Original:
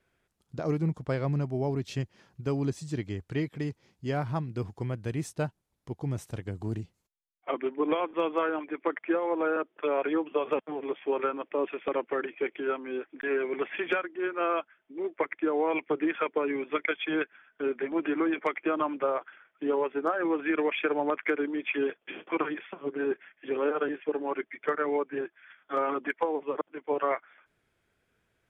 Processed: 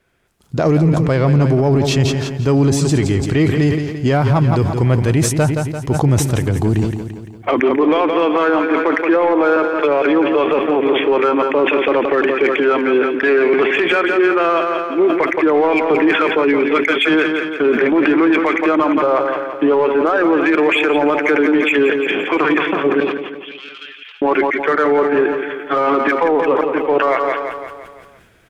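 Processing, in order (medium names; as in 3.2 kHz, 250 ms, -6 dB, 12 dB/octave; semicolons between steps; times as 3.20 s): level rider gain up to 12 dB; in parallel at -5.5 dB: saturation -19 dBFS, distortion -9 dB; 23.00–24.22 s: on the sum: ladder high-pass 2.6 kHz, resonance 45%; on a send: feedback delay 171 ms, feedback 52%, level -11 dB; on the sum: loudness maximiser +12 dB; decay stretcher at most 51 dB/s; trim -6 dB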